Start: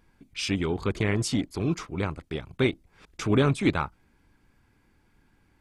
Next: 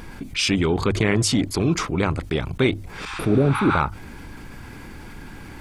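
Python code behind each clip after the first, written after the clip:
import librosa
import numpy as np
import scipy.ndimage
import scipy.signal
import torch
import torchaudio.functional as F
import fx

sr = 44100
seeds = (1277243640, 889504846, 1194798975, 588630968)

y = fx.hum_notches(x, sr, base_hz=50, count=2)
y = fx.spec_repair(y, sr, seeds[0], start_s=3.08, length_s=0.66, low_hz=790.0, high_hz=9400.0, source='both')
y = fx.env_flatten(y, sr, amount_pct=50)
y = y * 10.0 ** (3.0 / 20.0)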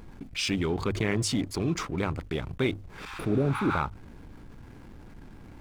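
y = fx.backlash(x, sr, play_db=-36.0)
y = y * 10.0 ** (-7.5 / 20.0)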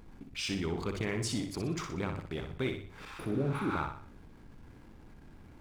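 y = fx.echo_feedback(x, sr, ms=61, feedback_pct=41, wet_db=-6.5)
y = y * 10.0 ** (-7.0 / 20.0)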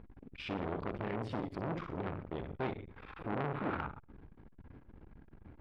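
y = fx.air_absorb(x, sr, metres=460.0)
y = fx.transformer_sat(y, sr, knee_hz=1200.0)
y = y * 10.0 ** (2.5 / 20.0)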